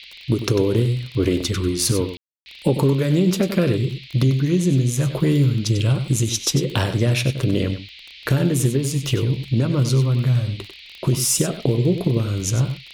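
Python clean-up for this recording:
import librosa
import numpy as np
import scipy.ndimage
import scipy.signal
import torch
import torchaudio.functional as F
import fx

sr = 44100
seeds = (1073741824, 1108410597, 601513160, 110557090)

y = fx.fix_declick_ar(x, sr, threshold=6.5)
y = fx.fix_ambience(y, sr, seeds[0], print_start_s=7.77, print_end_s=8.27, start_s=2.17, end_s=2.46)
y = fx.noise_reduce(y, sr, print_start_s=7.77, print_end_s=8.27, reduce_db=24.0)
y = fx.fix_echo_inverse(y, sr, delay_ms=96, level_db=-10.5)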